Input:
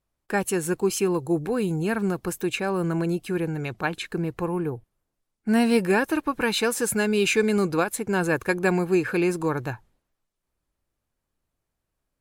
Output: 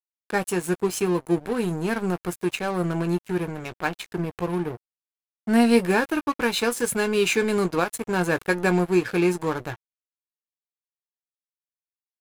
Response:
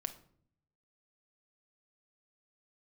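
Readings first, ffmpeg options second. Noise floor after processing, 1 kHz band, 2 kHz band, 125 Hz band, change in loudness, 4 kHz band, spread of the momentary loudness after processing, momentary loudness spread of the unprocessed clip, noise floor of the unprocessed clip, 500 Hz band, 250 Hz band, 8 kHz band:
under -85 dBFS, +1.5 dB, +0.5 dB, 0.0 dB, +0.5 dB, +0.5 dB, 9 LU, 8 LU, -82 dBFS, +0.5 dB, +0.5 dB, -1.0 dB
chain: -filter_complex "[0:a]aresample=32000,aresample=44100,asplit=2[a][b];[b]adelay=17,volume=-9dB[c];[a][c]amix=inputs=2:normalize=0,aeval=exprs='sgn(val(0))*max(abs(val(0))-0.02,0)':c=same,volume=1.5dB"

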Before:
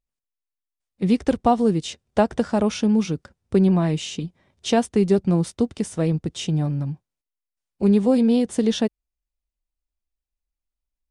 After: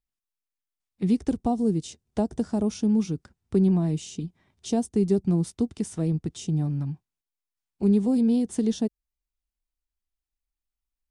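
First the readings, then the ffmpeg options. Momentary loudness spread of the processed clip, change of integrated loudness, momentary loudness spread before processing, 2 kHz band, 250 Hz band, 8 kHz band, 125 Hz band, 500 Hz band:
11 LU, -4.0 dB, 10 LU, under -10 dB, -3.5 dB, -4.5 dB, -3.0 dB, -7.5 dB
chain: -filter_complex "[0:a]equalizer=f=540:t=o:w=0.36:g=-9.5,acrossover=split=690|5000[a][b][c];[b]acompressor=threshold=-47dB:ratio=6[d];[a][d][c]amix=inputs=3:normalize=0,volume=-3dB"

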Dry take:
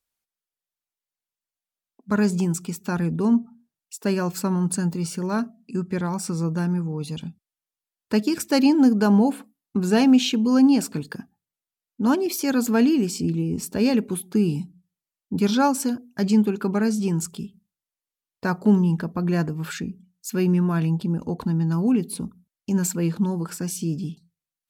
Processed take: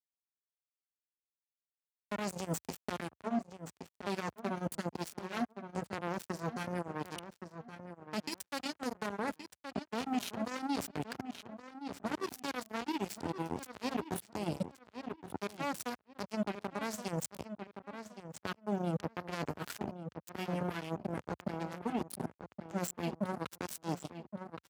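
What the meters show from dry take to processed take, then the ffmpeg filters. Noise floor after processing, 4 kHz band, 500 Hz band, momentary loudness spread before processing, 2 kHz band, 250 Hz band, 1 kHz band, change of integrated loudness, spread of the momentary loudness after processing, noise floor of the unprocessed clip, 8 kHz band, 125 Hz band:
under -85 dBFS, -12.0 dB, -13.0 dB, 14 LU, -9.5 dB, -19.0 dB, -8.5 dB, -17.0 dB, 9 LU, under -85 dBFS, -14.5 dB, -17.5 dB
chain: -filter_complex "[0:a]equalizer=f=110:w=3.8:g=-10.5,flanger=delay=1.2:depth=8.8:regen=17:speed=0.12:shape=sinusoidal,areverse,acompressor=threshold=-34dB:ratio=8,areverse,acrusher=bits=4:mix=0:aa=0.5,highpass=f=70:w=0.5412,highpass=f=70:w=1.3066,asplit=2[a][b];[b]adelay=1120,lowpass=f=3.1k:p=1,volume=-12.5dB,asplit=2[c][d];[d]adelay=1120,lowpass=f=3.1k:p=1,volume=0.2[e];[a][c][e]amix=inputs=3:normalize=0,alimiter=level_in=8.5dB:limit=-24dB:level=0:latency=1:release=158,volume=-8.5dB,acompressor=mode=upward:threshold=-51dB:ratio=2.5,volume=8dB"

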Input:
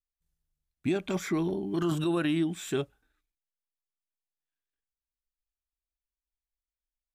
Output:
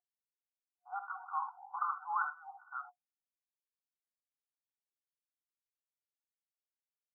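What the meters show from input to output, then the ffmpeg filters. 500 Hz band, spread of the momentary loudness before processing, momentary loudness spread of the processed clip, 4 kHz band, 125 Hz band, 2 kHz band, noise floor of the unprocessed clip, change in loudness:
under -35 dB, 6 LU, 10 LU, under -40 dB, under -40 dB, -3.5 dB, under -85 dBFS, -9.5 dB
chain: -filter_complex "[0:a]anlmdn=0.631,aecho=1:1:50|64|79:0.224|0.2|0.266,aeval=exprs='val(0)+0.00398*(sin(2*PI*50*n/s)+sin(2*PI*2*50*n/s)/2+sin(2*PI*3*50*n/s)/3+sin(2*PI*4*50*n/s)/4+sin(2*PI*5*50*n/s)/5)':c=same,afftfilt=real='re*between(b*sr/4096,720,1500)':imag='im*between(b*sr/4096,720,1500)':win_size=4096:overlap=0.75,asplit=2[a][b];[b]afreqshift=2.4[c];[a][c]amix=inputs=2:normalize=1,volume=7dB"

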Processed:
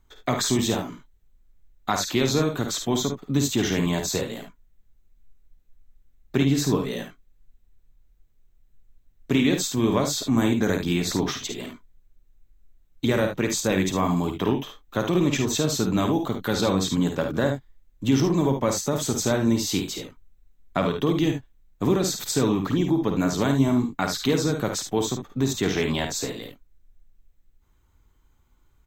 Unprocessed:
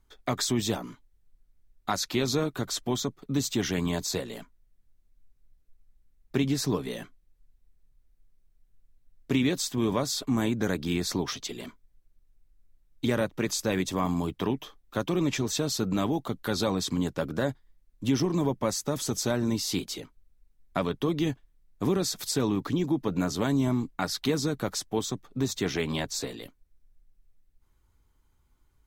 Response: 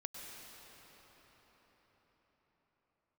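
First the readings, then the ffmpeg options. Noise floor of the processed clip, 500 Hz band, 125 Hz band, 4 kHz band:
-61 dBFS, +5.0 dB, +5.0 dB, +3.5 dB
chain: -filter_complex "[0:a]superequalizer=14b=0.631:16b=0.355,asplit=2[a][b];[b]aecho=0:1:52|73:0.447|0.335[c];[a][c]amix=inputs=2:normalize=0,volume=4dB"

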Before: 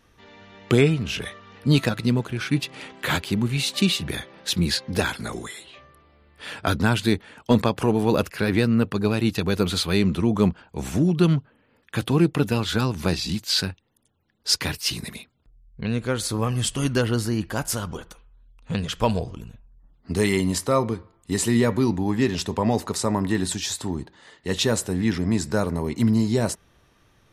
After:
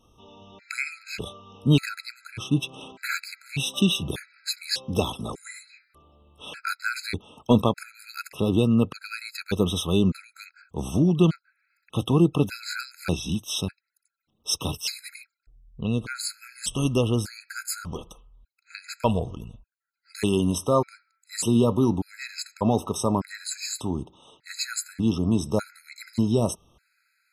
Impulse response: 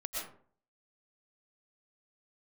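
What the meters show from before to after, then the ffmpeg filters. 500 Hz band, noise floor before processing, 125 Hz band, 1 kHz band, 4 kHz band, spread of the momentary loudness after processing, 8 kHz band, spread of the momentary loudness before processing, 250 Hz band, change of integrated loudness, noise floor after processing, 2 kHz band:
-3.0 dB, -62 dBFS, -3.0 dB, -3.0 dB, -4.0 dB, 17 LU, -3.0 dB, 12 LU, -2.5 dB, -2.5 dB, -76 dBFS, -4.5 dB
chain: -af "bandreject=f=1.8k:w=6.3,afftfilt=real='re*gt(sin(2*PI*0.84*pts/sr)*(1-2*mod(floor(b*sr/1024/1300),2)),0)':imag='im*gt(sin(2*PI*0.84*pts/sr)*(1-2*mod(floor(b*sr/1024/1300),2)),0)':win_size=1024:overlap=0.75"

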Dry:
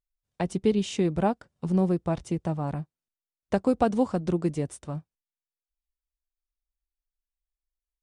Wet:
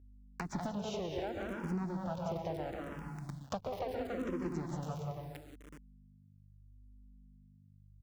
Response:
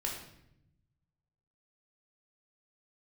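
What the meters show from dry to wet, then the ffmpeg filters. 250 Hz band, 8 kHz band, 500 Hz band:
-13.0 dB, -10.5 dB, -11.0 dB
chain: -filter_complex "[0:a]aeval=exprs='max(val(0),0)':c=same,aecho=1:1:186.6|279.9:0.562|0.398,asplit=2[a][b];[1:a]atrim=start_sample=2205,adelay=124[c];[b][c]afir=irnorm=-1:irlink=0,volume=-9dB[d];[a][d]amix=inputs=2:normalize=0,alimiter=limit=-17.5dB:level=0:latency=1:release=167,aresample=16000,aresample=44100,acrusher=bits=8:dc=4:mix=0:aa=0.000001,acompressor=mode=upward:threshold=-32dB:ratio=2.5,highpass=41,acompressor=threshold=-36dB:ratio=2.5,aeval=exprs='val(0)+0.00141*(sin(2*PI*50*n/s)+sin(2*PI*2*50*n/s)/2+sin(2*PI*3*50*n/s)/3+sin(2*PI*4*50*n/s)/4+sin(2*PI*5*50*n/s)/5)':c=same,asplit=2[e][f];[f]afreqshift=-0.73[g];[e][g]amix=inputs=2:normalize=1,volume=2.5dB"

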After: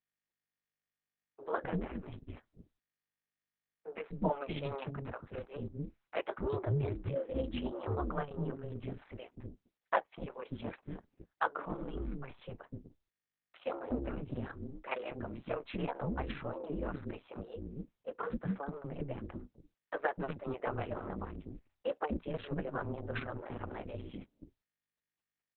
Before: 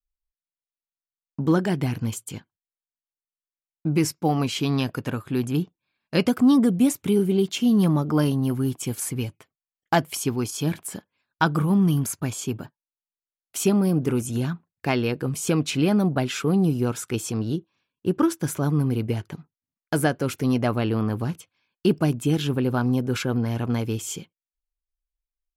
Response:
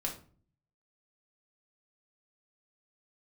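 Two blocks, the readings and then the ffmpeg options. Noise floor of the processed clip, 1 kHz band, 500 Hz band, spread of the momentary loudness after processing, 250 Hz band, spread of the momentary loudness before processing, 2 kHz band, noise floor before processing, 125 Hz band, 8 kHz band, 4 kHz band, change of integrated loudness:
under -85 dBFS, -9.5 dB, -11.5 dB, 13 LU, -19.5 dB, 11 LU, -11.5 dB, under -85 dBFS, -17.0 dB, under -40 dB, -20.0 dB, -16.0 dB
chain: -filter_complex "[0:a]acrossover=split=300 2300:gain=0.178 1 0.0891[a][b][c];[a][b][c]amix=inputs=3:normalize=0,aeval=exprs='val(0)*sin(2*PI*140*n/s)':c=same,flanger=delay=0.8:depth=6.6:regen=-56:speed=0.99:shape=sinusoidal,acrossover=split=360[d][e];[d]adelay=250[f];[f][e]amix=inputs=2:normalize=0" -ar 48000 -c:a libopus -b:a 6k

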